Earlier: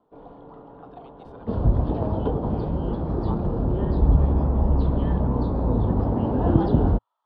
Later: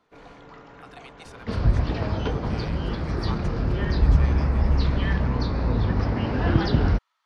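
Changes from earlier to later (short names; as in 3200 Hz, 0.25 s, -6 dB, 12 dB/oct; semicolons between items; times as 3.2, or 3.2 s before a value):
first sound: remove steep low-pass 5500 Hz; master: remove EQ curve 110 Hz 0 dB, 270 Hz +4 dB, 900 Hz +3 dB, 2200 Hz -23 dB, 3300 Hz -11 dB, 6100 Hz -28 dB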